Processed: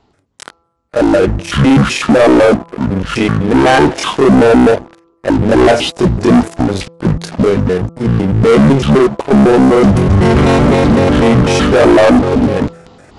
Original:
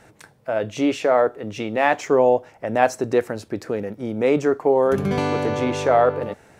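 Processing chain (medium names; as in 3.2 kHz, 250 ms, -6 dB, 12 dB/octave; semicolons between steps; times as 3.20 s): pitch shift switched off and on +10.5 st, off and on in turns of 63 ms; waveshaping leveller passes 5; reverse; upward compressor, threshold -22 dBFS; reverse; de-hum 335.3 Hz, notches 8; speed mistake 15 ips tape played at 7.5 ips; trim -1 dB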